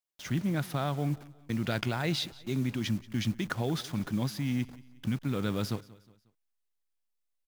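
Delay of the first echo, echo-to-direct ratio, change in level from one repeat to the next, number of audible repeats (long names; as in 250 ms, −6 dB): 181 ms, −20.0 dB, −7.5 dB, 2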